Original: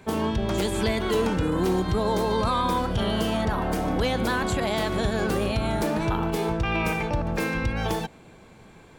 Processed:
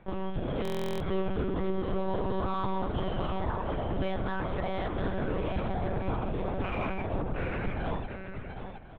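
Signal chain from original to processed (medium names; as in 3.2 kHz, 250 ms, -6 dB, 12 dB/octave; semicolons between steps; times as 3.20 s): peaking EQ 160 Hz -4 dB 0.43 oct; on a send: delay 716 ms -7.5 dB; on the sum: monotone LPC vocoder at 8 kHz 190 Hz; in parallel at -11 dB: saturation -24.5 dBFS, distortion -9 dB; on the sum: treble shelf 2.3 kHz -9.5 dB; delay 1053 ms -17 dB; buffer glitch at 0.63 s, samples 1024, times 15; trim -7 dB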